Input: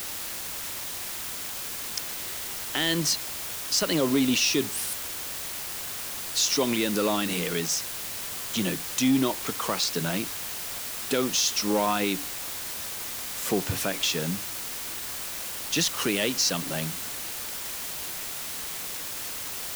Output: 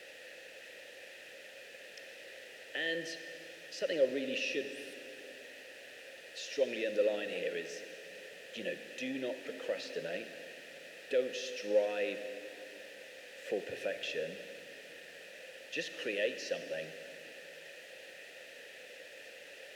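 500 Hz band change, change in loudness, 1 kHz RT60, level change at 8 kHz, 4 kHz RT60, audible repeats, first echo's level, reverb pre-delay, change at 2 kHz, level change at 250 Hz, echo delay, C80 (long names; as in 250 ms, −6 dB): −3.5 dB, −11.0 dB, 2.7 s, −25.0 dB, 2.5 s, no echo audible, no echo audible, 36 ms, −7.5 dB, −17.0 dB, no echo audible, 9.5 dB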